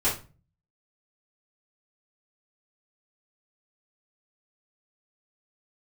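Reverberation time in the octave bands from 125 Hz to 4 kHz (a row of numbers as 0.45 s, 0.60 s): 0.65 s, 0.50 s, 0.35 s, 0.30 s, 0.30 s, 0.25 s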